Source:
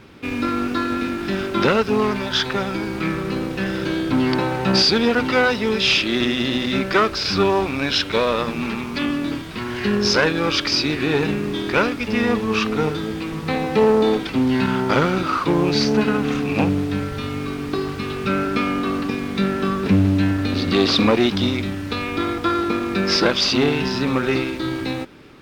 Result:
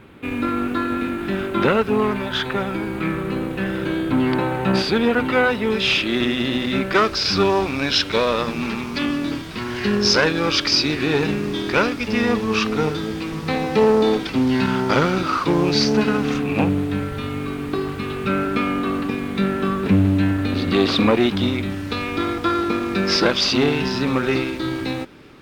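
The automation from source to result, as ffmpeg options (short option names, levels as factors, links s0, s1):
-af "asetnsamples=n=441:p=0,asendcmd='5.7 equalizer g -7;6.95 equalizer g 3;16.38 equalizer g -7.5;21.7 equalizer g -0.5',equalizer=f=5300:t=o:w=0.72:g=-13.5"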